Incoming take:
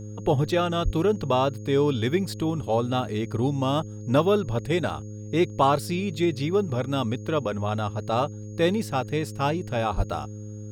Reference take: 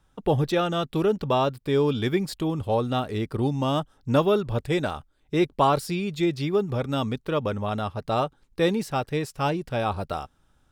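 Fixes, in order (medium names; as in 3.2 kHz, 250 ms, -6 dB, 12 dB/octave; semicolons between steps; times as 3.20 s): de-hum 105.4 Hz, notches 5; band-stop 6.6 kHz, Q 30; 0.84–0.96 s: high-pass 140 Hz 24 dB/octave; 9.96–10.08 s: high-pass 140 Hz 24 dB/octave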